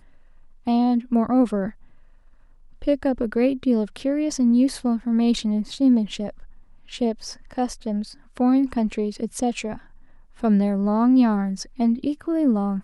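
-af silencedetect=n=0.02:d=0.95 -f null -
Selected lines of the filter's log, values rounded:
silence_start: 1.70
silence_end: 2.82 | silence_duration: 1.12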